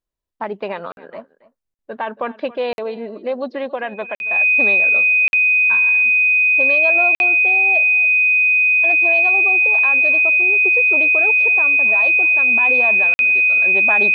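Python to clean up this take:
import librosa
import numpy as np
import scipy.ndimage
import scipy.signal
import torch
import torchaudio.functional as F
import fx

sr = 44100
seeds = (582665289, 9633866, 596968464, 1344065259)

y = fx.notch(x, sr, hz=2500.0, q=30.0)
y = fx.fix_interpolate(y, sr, at_s=(0.92, 1.74, 2.73, 4.15, 5.28, 7.15, 13.14), length_ms=51.0)
y = fx.fix_echo_inverse(y, sr, delay_ms=276, level_db=-19.5)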